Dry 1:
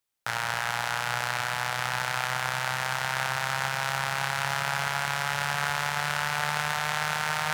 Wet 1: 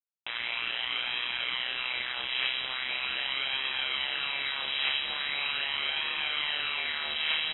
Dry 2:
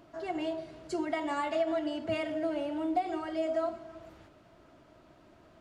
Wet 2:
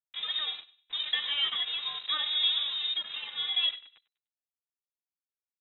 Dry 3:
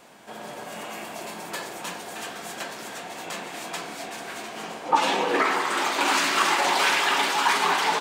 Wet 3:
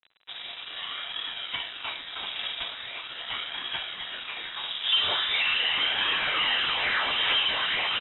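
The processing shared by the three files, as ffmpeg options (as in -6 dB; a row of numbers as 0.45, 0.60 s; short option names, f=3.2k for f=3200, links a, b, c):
-filter_complex "[0:a]highpass=f=120:w=0.5412,highpass=f=120:w=1.3066,bandreject=f=1.5k:w=11,adynamicequalizer=threshold=0.00708:dfrequency=410:dqfactor=1.6:tfrequency=410:tqfactor=1.6:attack=5:release=100:ratio=0.375:range=3:mode=cutabove:tftype=bell,asplit=2[a][b];[b]alimiter=limit=-18.5dB:level=0:latency=1,volume=1dB[c];[a][c]amix=inputs=2:normalize=0,asoftclip=type=tanh:threshold=-20.5dB,aphaser=in_gain=1:out_gain=1:delay=1.4:decay=0.39:speed=0.41:type=triangular,aeval=exprs='sgn(val(0))*max(abs(val(0))-0.0168,0)':c=same,acrusher=bits=7:mix=0:aa=0.000001,asplit=2[d][e];[e]adelay=99,lowpass=f=3.1k:p=1,volume=-18dB,asplit=2[f][g];[g]adelay=99,lowpass=f=3.1k:p=1,volume=0.35,asplit=2[h][i];[i]adelay=99,lowpass=f=3.1k:p=1,volume=0.35[j];[f][h][j]amix=inputs=3:normalize=0[k];[d][k]amix=inputs=2:normalize=0,lowpass=f=3.4k:t=q:w=0.5098,lowpass=f=3.4k:t=q:w=0.6013,lowpass=f=3.4k:t=q:w=0.9,lowpass=f=3.4k:t=q:w=2.563,afreqshift=-4000"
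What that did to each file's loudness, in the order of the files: -1.5, +4.5, -2.0 LU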